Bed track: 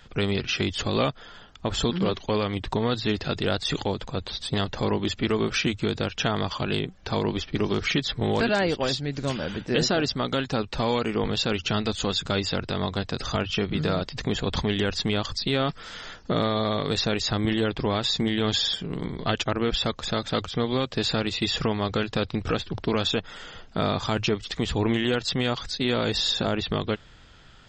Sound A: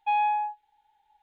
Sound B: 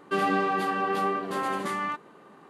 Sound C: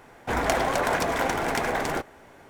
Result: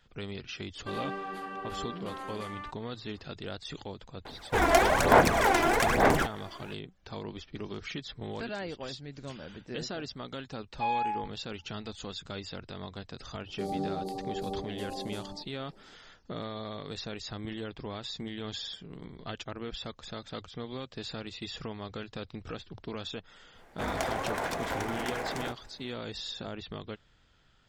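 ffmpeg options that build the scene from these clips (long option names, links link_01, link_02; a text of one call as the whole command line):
ffmpeg -i bed.wav -i cue0.wav -i cue1.wav -i cue2.wav -filter_complex "[2:a]asplit=2[link_01][link_02];[3:a]asplit=2[link_03][link_04];[0:a]volume=-14dB[link_05];[link_03]aphaser=in_gain=1:out_gain=1:delay=3:decay=0.65:speed=1.1:type=sinusoidal[link_06];[link_02]asuperstop=centerf=1900:order=12:qfactor=0.59[link_07];[link_01]atrim=end=2.49,asetpts=PTS-STARTPTS,volume=-12dB,afade=type=in:duration=0.004:curve=hsin,afade=type=out:start_time=2.486:duration=0.004:curve=hsin,adelay=750[link_08];[link_06]atrim=end=2.49,asetpts=PTS-STARTPTS,volume=-1dB,afade=type=in:duration=0.004:curve=hsin,afade=type=out:start_time=2.486:duration=0.004:curve=hsin,adelay=187425S[link_09];[1:a]atrim=end=1.22,asetpts=PTS-STARTPTS,volume=-5.5dB,afade=type=in:duration=0.004:curve=hsin,afade=type=out:start_time=1.216:duration=0.004:curve=hsin,adelay=473634S[link_10];[link_07]atrim=end=2.49,asetpts=PTS-STARTPTS,volume=-6.5dB,afade=type=in:duration=0.004:curve=hsin,afade=type=out:start_time=2.486:duration=0.004:curve=hsin,adelay=13470[link_11];[link_04]atrim=end=2.49,asetpts=PTS-STARTPTS,volume=-8.5dB,afade=type=in:duration=0.1,afade=type=out:start_time=2.39:duration=0.1,adelay=23510[link_12];[link_05][link_08][link_09][link_10][link_11][link_12]amix=inputs=6:normalize=0" out.wav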